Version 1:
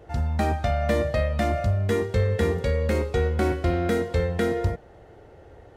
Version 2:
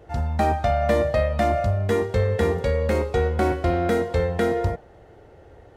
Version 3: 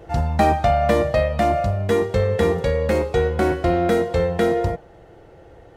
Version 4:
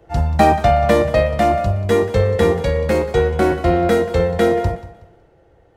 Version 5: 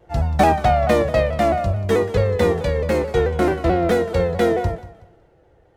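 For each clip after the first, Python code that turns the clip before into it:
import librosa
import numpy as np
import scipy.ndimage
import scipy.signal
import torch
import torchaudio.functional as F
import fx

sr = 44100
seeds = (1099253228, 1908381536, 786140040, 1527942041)

y1 = fx.dynamic_eq(x, sr, hz=790.0, q=0.99, threshold_db=-40.0, ratio=4.0, max_db=6)
y2 = y1 + 0.31 * np.pad(y1, (int(6.0 * sr / 1000.0), 0))[:len(y1)]
y2 = fx.rider(y2, sr, range_db=10, speed_s=2.0)
y2 = F.gain(torch.from_numpy(y2), 2.5).numpy()
y3 = fx.echo_feedback(y2, sr, ms=185, feedback_pct=38, wet_db=-14.5)
y3 = fx.band_widen(y3, sr, depth_pct=40)
y3 = F.gain(torch.from_numpy(y3), 3.5).numpy()
y4 = fx.tracing_dist(y3, sr, depth_ms=0.044)
y4 = fx.vibrato_shape(y4, sr, shape='saw_down', rate_hz=4.6, depth_cents=100.0)
y4 = F.gain(torch.from_numpy(y4), -2.5).numpy()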